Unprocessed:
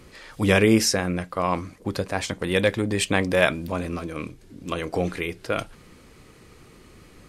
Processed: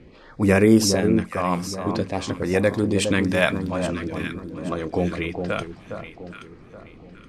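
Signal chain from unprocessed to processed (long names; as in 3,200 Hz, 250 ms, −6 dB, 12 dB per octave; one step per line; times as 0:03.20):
low-pass that shuts in the quiet parts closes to 2,400 Hz, open at −18 dBFS
parametric band 250 Hz +4 dB 1.5 octaves
auto-filter notch sine 0.49 Hz 330–3,300 Hz
delay that swaps between a low-pass and a high-pass 412 ms, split 1,200 Hz, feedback 56%, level −6 dB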